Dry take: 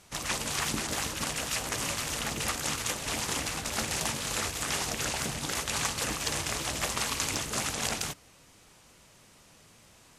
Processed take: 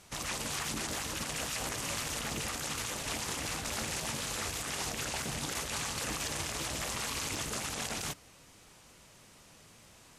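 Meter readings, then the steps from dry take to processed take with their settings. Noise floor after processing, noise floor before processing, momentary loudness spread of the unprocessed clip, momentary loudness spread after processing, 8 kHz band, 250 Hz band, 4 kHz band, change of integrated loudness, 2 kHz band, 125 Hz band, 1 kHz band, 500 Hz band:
-58 dBFS, -58 dBFS, 2 LU, 1 LU, -4.5 dB, -3.5 dB, -4.5 dB, -4.0 dB, -4.5 dB, -3.5 dB, -4.5 dB, -4.0 dB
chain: limiter -25.5 dBFS, peak gain reduction 10 dB

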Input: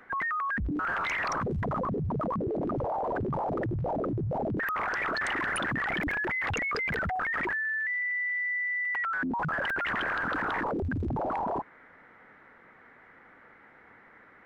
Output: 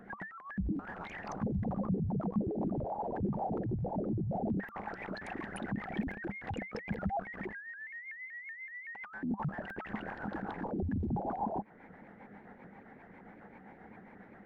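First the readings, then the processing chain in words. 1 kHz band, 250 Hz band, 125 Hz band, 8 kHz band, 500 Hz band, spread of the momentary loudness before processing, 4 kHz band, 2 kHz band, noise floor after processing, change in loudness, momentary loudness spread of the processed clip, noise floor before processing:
-9.0 dB, -1.0 dB, -3.0 dB, under -15 dB, -6.5 dB, 3 LU, -16.0 dB, -15.5 dB, -55 dBFS, -8.0 dB, 19 LU, -56 dBFS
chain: compressor, threshold -41 dBFS, peak gain reduction 11.5 dB; tilt shelf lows +5.5 dB, about 910 Hz; rotary speaker horn 7.5 Hz; thirty-one-band EQ 200 Hz +11 dB, 800 Hz +10 dB, 1250 Hz -7 dB; shaped vibrato saw up 5.3 Hz, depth 160 cents; gain +2 dB

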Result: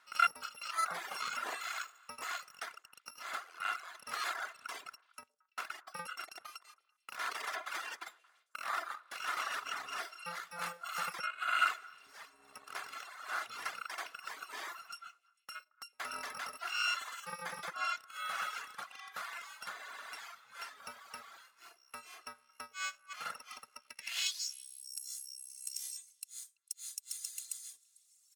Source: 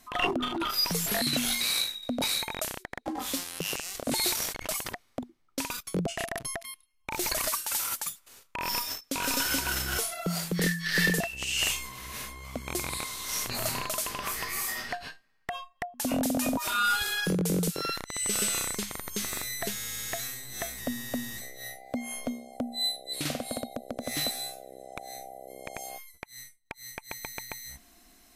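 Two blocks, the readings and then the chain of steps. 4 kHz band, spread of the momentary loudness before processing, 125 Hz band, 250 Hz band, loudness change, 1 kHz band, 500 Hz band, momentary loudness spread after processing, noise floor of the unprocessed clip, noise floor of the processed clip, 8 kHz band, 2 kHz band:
-11.5 dB, 15 LU, -30.5 dB, -31.0 dB, -9.5 dB, -3.0 dB, -17.5 dB, 16 LU, -65 dBFS, -74 dBFS, -13.5 dB, -6.0 dB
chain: FFT order left unsorted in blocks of 128 samples; band-pass sweep 1300 Hz -> 7700 Hz, 23.79–24.66; HPF 160 Hz 12 dB/oct; comb 2.9 ms, depth 33%; delay with a stepping band-pass 0.112 s, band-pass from 460 Hz, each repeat 1.4 oct, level -9 dB; reverb removal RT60 1.8 s; gain +6.5 dB

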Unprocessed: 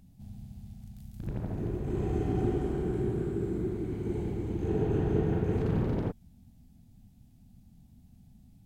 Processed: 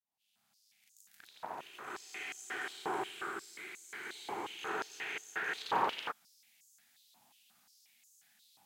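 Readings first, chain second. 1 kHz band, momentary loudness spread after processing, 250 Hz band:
+6.5 dB, 13 LU, -20.0 dB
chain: opening faded in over 2.74 s; stepped high-pass 5.6 Hz 960–6700 Hz; gain +8 dB

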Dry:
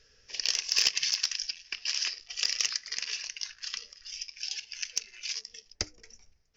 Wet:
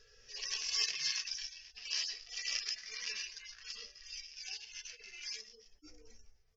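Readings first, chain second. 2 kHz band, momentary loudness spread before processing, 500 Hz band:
-7.0 dB, 13 LU, -7.5 dB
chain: median-filter separation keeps harmonic; de-hum 303.8 Hz, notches 39; gain +2 dB

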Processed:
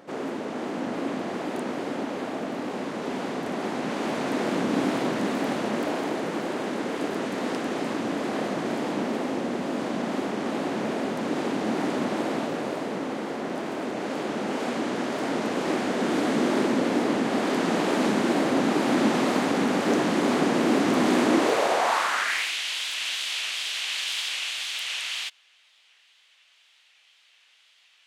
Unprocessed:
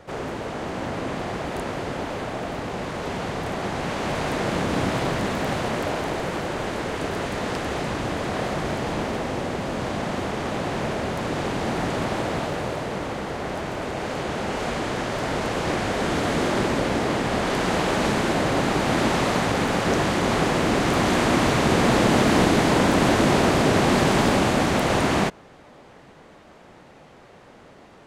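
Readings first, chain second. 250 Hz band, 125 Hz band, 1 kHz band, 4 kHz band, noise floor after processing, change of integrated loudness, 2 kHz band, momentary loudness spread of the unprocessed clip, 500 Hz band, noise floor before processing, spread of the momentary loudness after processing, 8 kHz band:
-1.0 dB, -11.5 dB, -4.5 dB, -1.0 dB, -60 dBFS, -3.0 dB, -3.5 dB, 11 LU, -3.0 dB, -48 dBFS, 9 LU, -3.5 dB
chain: high-pass sweep 250 Hz -> 3000 Hz, 21.22–22.59; wow and flutter 72 cents; gain -4 dB

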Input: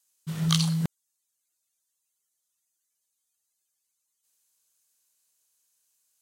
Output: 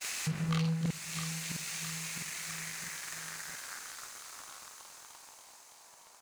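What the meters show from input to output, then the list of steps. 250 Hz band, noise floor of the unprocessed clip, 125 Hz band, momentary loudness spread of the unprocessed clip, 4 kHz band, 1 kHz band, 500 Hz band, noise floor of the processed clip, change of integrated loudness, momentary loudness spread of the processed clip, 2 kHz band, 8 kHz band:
-5.0 dB, -80 dBFS, -5.0 dB, 11 LU, -5.5 dB, 0.0 dB, +2.0 dB, -57 dBFS, -10.0 dB, 20 LU, +8.0 dB, +3.5 dB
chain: switching spikes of -17.5 dBFS; doubler 47 ms -3 dB; expander -18 dBFS; vocal rider 0.5 s; low shelf 320 Hz +5 dB; low-pass sweep 2700 Hz -> 890 Hz, 1.82–5.51; HPF 60 Hz; bell 3200 Hz -14 dB 0.59 oct; on a send: feedback echo 0.66 s, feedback 50%, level -19 dB; on the sum: sample leveller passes 3; thin delay 0.304 s, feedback 82%, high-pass 3900 Hz, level -9.5 dB; compressor 2.5:1, threshold -35 dBFS, peak gain reduction 14.5 dB; gain -2.5 dB

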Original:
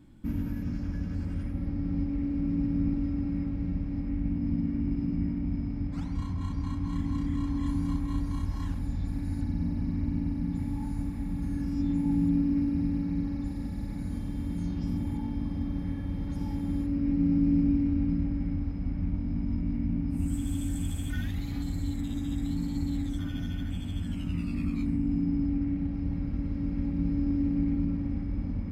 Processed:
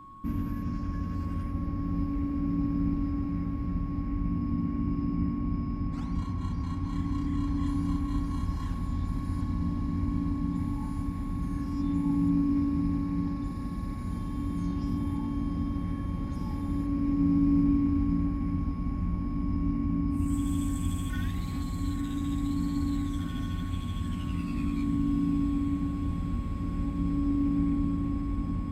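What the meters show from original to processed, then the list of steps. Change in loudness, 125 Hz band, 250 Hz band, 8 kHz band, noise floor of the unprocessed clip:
+0.5 dB, +0.5 dB, +0.5 dB, n/a, -34 dBFS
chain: whine 1100 Hz -46 dBFS; diffused feedback echo 0.866 s, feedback 80%, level -11 dB

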